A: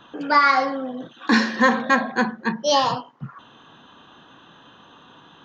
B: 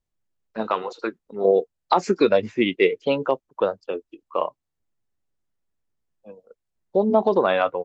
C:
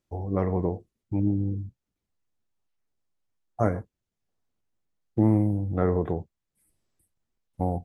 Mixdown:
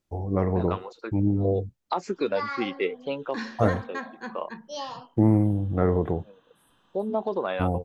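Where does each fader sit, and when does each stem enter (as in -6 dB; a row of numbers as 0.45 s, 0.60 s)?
-16.5 dB, -9.0 dB, +1.5 dB; 2.05 s, 0.00 s, 0.00 s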